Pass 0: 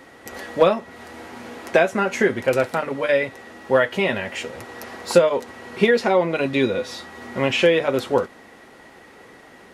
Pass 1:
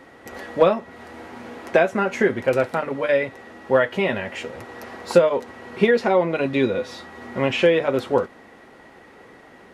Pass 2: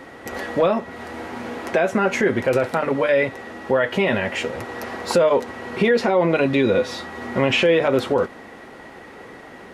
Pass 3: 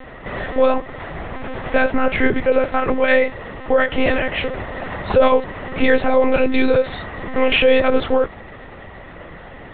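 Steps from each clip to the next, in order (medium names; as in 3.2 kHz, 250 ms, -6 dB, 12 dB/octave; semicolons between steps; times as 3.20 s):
treble shelf 3.5 kHz -8 dB
peak limiter -15.5 dBFS, peak gain reduction 11.5 dB; trim +6.5 dB
monotone LPC vocoder at 8 kHz 260 Hz; trim +3.5 dB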